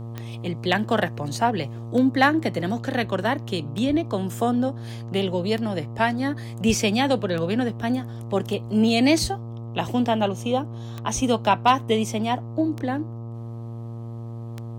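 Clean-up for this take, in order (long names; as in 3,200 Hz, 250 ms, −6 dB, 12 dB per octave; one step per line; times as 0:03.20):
clipped peaks rebuilt −7.5 dBFS
click removal
hum removal 115.6 Hz, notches 11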